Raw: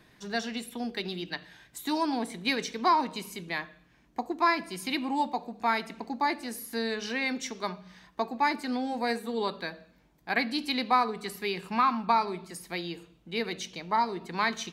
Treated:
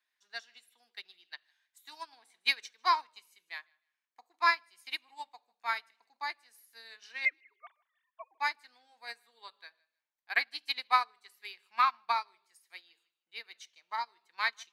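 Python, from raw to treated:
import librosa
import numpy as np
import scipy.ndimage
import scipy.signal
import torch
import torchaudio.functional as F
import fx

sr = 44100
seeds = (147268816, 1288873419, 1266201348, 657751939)

p1 = fx.sine_speech(x, sr, at=(7.25, 8.4))
p2 = scipy.signal.sosfilt(scipy.signal.butter(2, 1300.0, 'highpass', fs=sr, output='sos'), p1)
p3 = p2 + fx.echo_feedback(p2, sr, ms=154, feedback_pct=22, wet_db=-18, dry=0)
p4 = fx.upward_expand(p3, sr, threshold_db=-42.0, expansion=2.5)
y = p4 * librosa.db_to_amplitude(5.0)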